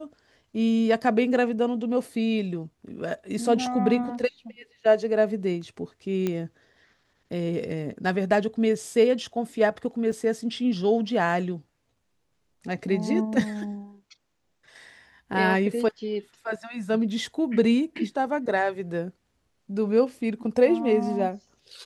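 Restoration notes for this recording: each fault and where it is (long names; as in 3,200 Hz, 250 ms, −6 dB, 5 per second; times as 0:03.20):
0:06.27: click −14 dBFS
0:10.12: drop-out 3.1 ms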